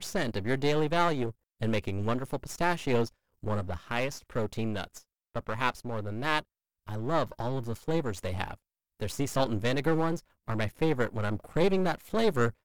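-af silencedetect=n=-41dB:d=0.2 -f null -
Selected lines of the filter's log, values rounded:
silence_start: 1.31
silence_end: 1.61 | silence_duration: 0.30
silence_start: 3.08
silence_end: 3.43 | silence_duration: 0.35
silence_start: 4.99
silence_end: 5.35 | silence_duration: 0.36
silence_start: 6.41
silence_end: 6.88 | silence_duration: 0.46
silence_start: 8.55
silence_end: 9.00 | silence_duration: 0.45
silence_start: 10.20
silence_end: 10.48 | silence_duration: 0.28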